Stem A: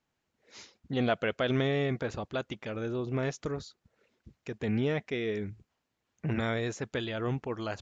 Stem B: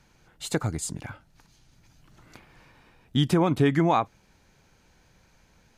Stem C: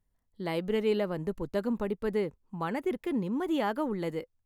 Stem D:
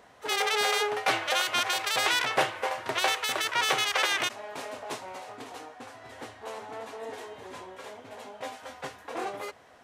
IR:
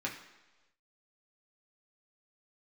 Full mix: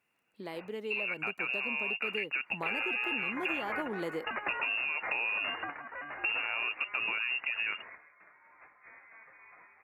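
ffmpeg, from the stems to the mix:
-filter_complex "[0:a]volume=1.33,asplit=2[s0][s1];[1:a]lowpass=2000,aeval=exprs='(tanh(8.91*val(0)+0.65)-tanh(0.65))/8.91':c=same,volume=0.133[s2];[2:a]volume=1.41[s3];[3:a]highpass=1100,asoftclip=type=hard:threshold=0.0447,adelay=2400,volume=0.531[s4];[s1]apad=whole_len=539740[s5];[s4][s5]sidechaingate=range=0.316:threshold=0.00126:ratio=16:detection=peak[s6];[s0][s6]amix=inputs=2:normalize=0,lowpass=f=2500:t=q:w=0.5098,lowpass=f=2500:t=q:w=0.6013,lowpass=f=2500:t=q:w=0.9,lowpass=f=2500:t=q:w=2.563,afreqshift=-2900,alimiter=limit=0.0668:level=0:latency=1:release=46,volume=1[s7];[s2][s3]amix=inputs=2:normalize=0,highpass=200,acompressor=threshold=0.00447:ratio=2,volume=1[s8];[s7][s8]amix=inputs=2:normalize=0,dynaudnorm=f=770:g=5:m=2.24,lowshelf=f=110:g=-9.5,acompressor=threshold=0.0316:ratio=6"

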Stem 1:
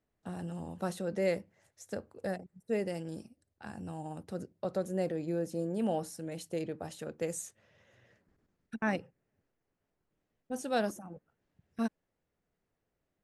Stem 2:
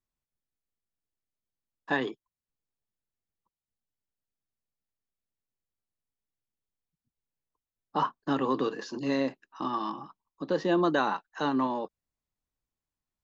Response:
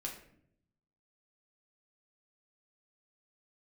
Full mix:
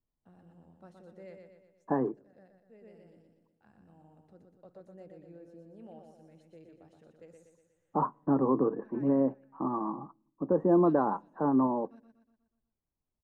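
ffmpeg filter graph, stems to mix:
-filter_complex "[0:a]volume=0.106,asplit=2[s0][s1];[s1]volume=0.562[s2];[1:a]lowpass=f=1100:w=0.5412,lowpass=f=1100:w=1.3066,lowshelf=f=410:g=4.5,volume=0.841,asplit=3[s3][s4][s5];[s4]volume=0.075[s6];[s5]apad=whole_len=583617[s7];[s0][s7]sidechaincompress=threshold=0.0112:ratio=8:attack=9.3:release=1250[s8];[2:a]atrim=start_sample=2205[s9];[s6][s9]afir=irnorm=-1:irlink=0[s10];[s2]aecho=0:1:121|242|363|484|605|726|847:1|0.51|0.26|0.133|0.0677|0.0345|0.0176[s11];[s8][s3][s10][s11]amix=inputs=4:normalize=0,aemphasis=mode=reproduction:type=75fm"

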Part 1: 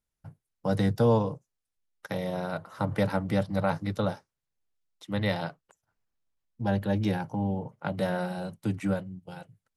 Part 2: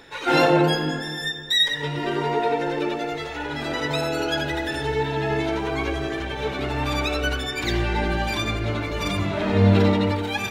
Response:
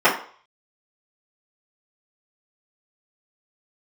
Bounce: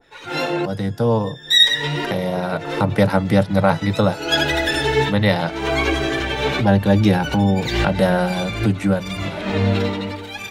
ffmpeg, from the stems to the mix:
-filter_complex "[0:a]volume=0.891,asplit=2[s0][s1];[1:a]flanger=delay=1.4:depth=7.4:regen=67:speed=0.87:shape=sinusoidal,adynamicequalizer=threshold=0.0126:dfrequency=1600:dqfactor=0.7:tfrequency=1600:tqfactor=0.7:attack=5:release=100:ratio=0.375:range=2.5:mode=boostabove:tftype=highshelf,volume=0.75[s2];[s1]apad=whole_len=463203[s3];[s2][s3]sidechaincompress=threshold=0.00501:ratio=12:attack=38:release=184[s4];[s0][s4]amix=inputs=2:normalize=0,dynaudnorm=f=110:g=21:m=5.62"

